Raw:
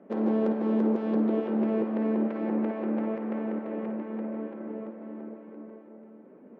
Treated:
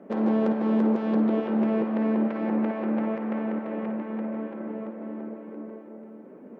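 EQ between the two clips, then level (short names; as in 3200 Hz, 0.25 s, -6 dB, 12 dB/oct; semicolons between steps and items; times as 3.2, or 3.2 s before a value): dynamic EQ 370 Hz, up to -6 dB, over -41 dBFS, Q 1.1; +5.5 dB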